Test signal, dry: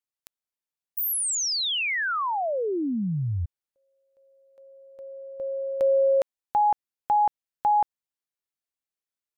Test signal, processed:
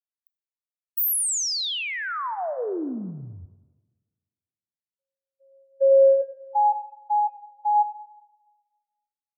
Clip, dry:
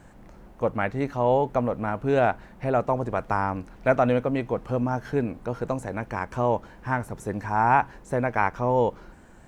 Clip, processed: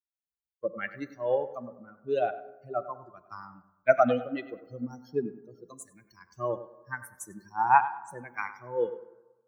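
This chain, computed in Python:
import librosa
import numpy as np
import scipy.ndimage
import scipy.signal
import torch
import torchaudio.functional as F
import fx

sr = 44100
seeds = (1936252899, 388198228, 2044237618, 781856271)

p1 = fx.bin_expand(x, sr, power=3.0)
p2 = scipy.signal.sosfilt(scipy.signal.butter(2, 260.0, 'highpass', fs=sr, output='sos'), p1)
p3 = fx.high_shelf(p2, sr, hz=8800.0, db=8.0)
p4 = fx.rider(p3, sr, range_db=5, speed_s=2.0)
p5 = p4 + fx.echo_tape(p4, sr, ms=99, feedback_pct=37, wet_db=-12, lp_hz=2600.0, drive_db=5.0, wow_cents=13, dry=0)
p6 = fx.rev_plate(p5, sr, seeds[0], rt60_s=1.8, hf_ratio=0.3, predelay_ms=0, drr_db=15.0)
p7 = fx.band_widen(p6, sr, depth_pct=40)
y = p7 * 10.0 ** (-1.0 / 20.0)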